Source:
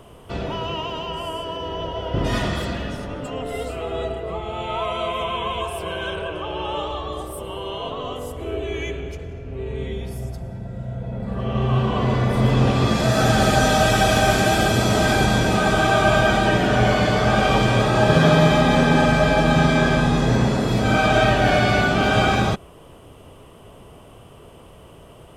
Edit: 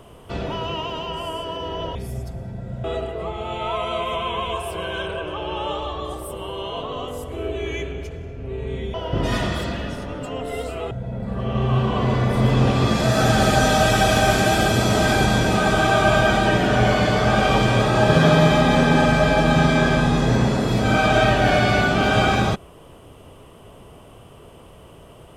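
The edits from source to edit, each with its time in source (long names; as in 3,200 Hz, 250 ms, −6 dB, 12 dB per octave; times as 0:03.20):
0:01.95–0:03.92: swap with 0:10.02–0:10.91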